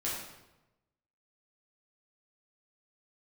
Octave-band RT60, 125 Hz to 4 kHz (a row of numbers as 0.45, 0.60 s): 1.3, 1.1, 1.0, 0.95, 0.85, 0.75 s